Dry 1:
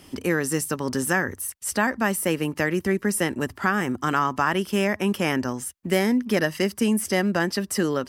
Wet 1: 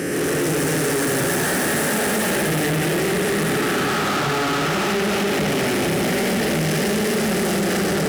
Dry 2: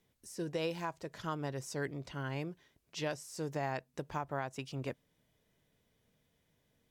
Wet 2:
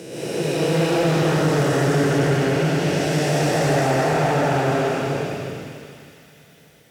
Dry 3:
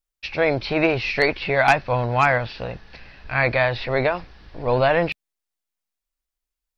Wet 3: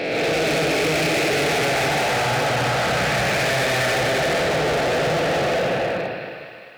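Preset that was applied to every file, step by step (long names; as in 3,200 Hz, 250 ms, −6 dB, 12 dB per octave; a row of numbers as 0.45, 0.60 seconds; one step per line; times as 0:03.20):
spectrum smeared in time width 867 ms
low-shelf EQ 130 Hz −7.5 dB
dense smooth reverb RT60 1.8 s, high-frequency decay 0.5×, pre-delay 110 ms, DRR −8 dB
downward compressor, threshold −20 dBFS
delay with a high-pass on its return 205 ms, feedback 67%, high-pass 2,000 Hz, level −7.5 dB
hard clipping −32.5 dBFS
high-pass filter 63 Hz
parametric band 1,000 Hz −10.5 dB 0.23 octaves
loudness normalisation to −20 LKFS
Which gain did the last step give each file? +13.5, +19.0, +13.5 decibels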